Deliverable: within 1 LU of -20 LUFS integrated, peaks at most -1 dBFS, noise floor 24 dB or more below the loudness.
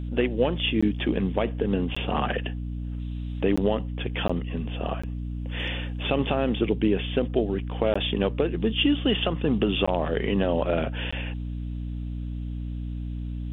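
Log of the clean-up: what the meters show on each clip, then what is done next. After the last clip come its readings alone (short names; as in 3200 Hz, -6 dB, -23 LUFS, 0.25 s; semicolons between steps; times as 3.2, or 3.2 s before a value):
dropouts 8; longest dropout 15 ms; hum 60 Hz; harmonics up to 300 Hz; hum level -29 dBFS; loudness -27.0 LUFS; peak -10.0 dBFS; loudness target -20.0 LUFS
-> interpolate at 0.81/1.95/3.56/4.28/5.02/7.94/9.86/11.11, 15 ms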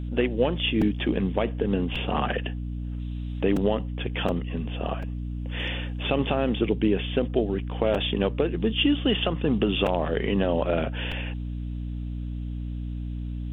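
dropouts 0; hum 60 Hz; harmonics up to 300 Hz; hum level -29 dBFS
-> notches 60/120/180/240/300 Hz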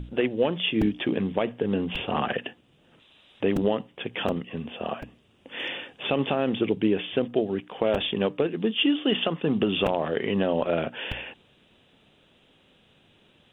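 hum none; loudness -27.0 LUFS; peak -10.5 dBFS; loudness target -20.0 LUFS
-> gain +7 dB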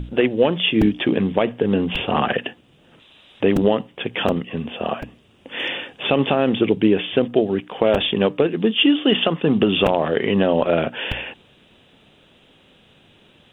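loudness -20.0 LUFS; peak -3.5 dBFS; noise floor -54 dBFS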